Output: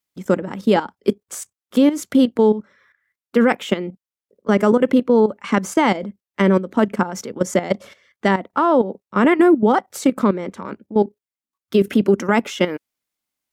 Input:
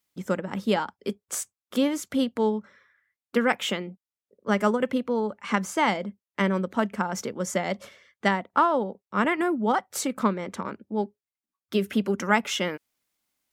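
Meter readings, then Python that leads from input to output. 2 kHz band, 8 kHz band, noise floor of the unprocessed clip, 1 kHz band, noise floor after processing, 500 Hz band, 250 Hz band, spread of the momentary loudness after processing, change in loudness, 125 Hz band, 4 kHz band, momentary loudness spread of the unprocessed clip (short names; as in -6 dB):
+3.5 dB, +1.5 dB, under -85 dBFS, +4.5 dB, under -85 dBFS, +9.5 dB, +9.5 dB, 11 LU, +8.5 dB, +8.0 dB, +2.0 dB, 9 LU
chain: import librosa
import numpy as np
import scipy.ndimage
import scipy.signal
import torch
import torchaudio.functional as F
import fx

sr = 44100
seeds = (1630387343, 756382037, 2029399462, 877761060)

y = fx.level_steps(x, sr, step_db=13)
y = fx.dynamic_eq(y, sr, hz=330.0, q=0.81, threshold_db=-42.0, ratio=4.0, max_db=8)
y = y * 10.0 ** (8.0 / 20.0)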